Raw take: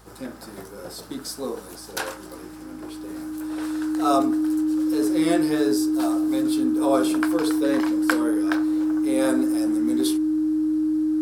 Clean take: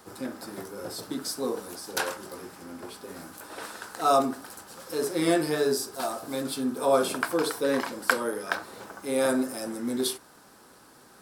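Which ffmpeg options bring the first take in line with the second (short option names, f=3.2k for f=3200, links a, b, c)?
-af "bandreject=f=55.3:t=h:w=4,bandreject=f=110.6:t=h:w=4,bandreject=f=165.9:t=h:w=4,bandreject=f=221.2:t=h:w=4,bandreject=f=310:w=30"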